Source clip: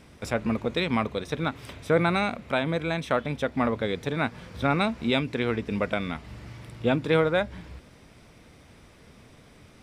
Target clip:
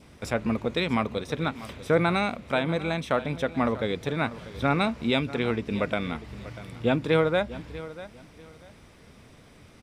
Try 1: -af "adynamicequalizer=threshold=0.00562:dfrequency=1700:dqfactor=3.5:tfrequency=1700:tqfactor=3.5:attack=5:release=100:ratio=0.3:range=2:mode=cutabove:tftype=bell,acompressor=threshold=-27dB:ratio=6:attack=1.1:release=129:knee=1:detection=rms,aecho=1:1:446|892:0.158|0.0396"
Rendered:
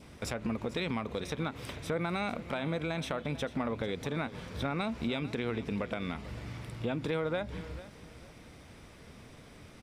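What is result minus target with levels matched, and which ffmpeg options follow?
compressor: peak gain reduction +12.5 dB; echo 0.196 s early
-af "adynamicequalizer=threshold=0.00562:dfrequency=1700:dqfactor=3.5:tfrequency=1700:tqfactor=3.5:attack=5:release=100:ratio=0.3:range=2:mode=cutabove:tftype=bell,aecho=1:1:642|1284:0.158|0.0396"

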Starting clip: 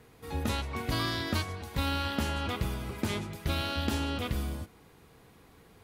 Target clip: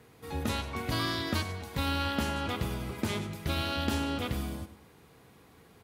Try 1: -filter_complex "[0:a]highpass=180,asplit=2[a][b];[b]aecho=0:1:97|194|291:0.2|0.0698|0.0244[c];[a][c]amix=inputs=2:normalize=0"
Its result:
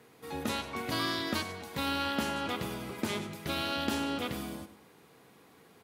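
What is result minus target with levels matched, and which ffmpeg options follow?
125 Hz band -7.5 dB
-filter_complex "[0:a]highpass=66,asplit=2[a][b];[b]aecho=0:1:97|194|291:0.2|0.0698|0.0244[c];[a][c]amix=inputs=2:normalize=0"

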